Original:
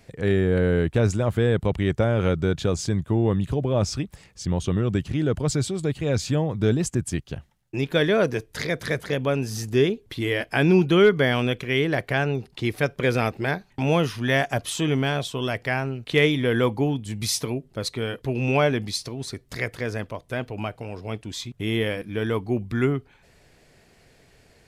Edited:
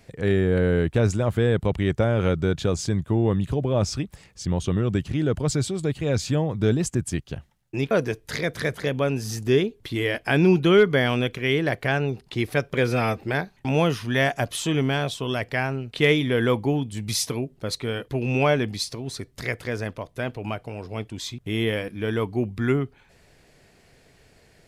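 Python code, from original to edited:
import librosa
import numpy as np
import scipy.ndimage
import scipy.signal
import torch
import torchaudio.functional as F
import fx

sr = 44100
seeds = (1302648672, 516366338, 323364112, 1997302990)

y = fx.edit(x, sr, fx.cut(start_s=7.91, length_s=0.26),
    fx.stretch_span(start_s=13.09, length_s=0.25, factor=1.5), tone=tone)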